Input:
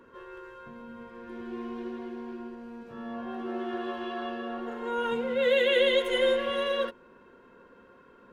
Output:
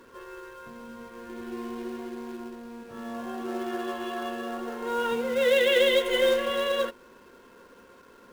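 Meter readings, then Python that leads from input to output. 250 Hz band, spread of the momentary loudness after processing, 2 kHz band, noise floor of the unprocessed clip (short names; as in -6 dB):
+1.0 dB, 22 LU, +2.0 dB, -56 dBFS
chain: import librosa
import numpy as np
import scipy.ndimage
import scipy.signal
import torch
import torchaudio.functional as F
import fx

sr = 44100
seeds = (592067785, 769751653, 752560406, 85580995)

p1 = fx.peak_eq(x, sr, hz=150.0, db=-4.0, octaves=0.95)
p2 = fx.quant_companded(p1, sr, bits=4)
p3 = p1 + F.gain(torch.from_numpy(p2), -3.5).numpy()
y = F.gain(torch.from_numpy(p3), -2.5).numpy()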